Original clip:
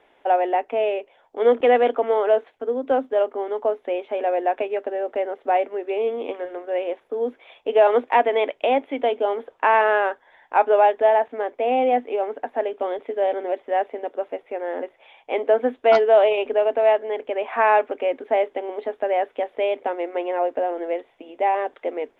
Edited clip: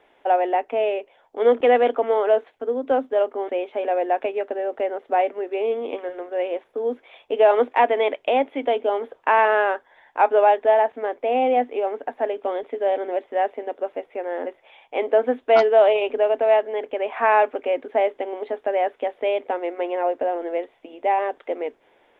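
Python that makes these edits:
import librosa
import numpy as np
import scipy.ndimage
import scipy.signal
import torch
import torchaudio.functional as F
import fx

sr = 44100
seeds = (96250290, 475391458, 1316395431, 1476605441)

y = fx.edit(x, sr, fx.cut(start_s=3.49, length_s=0.36), tone=tone)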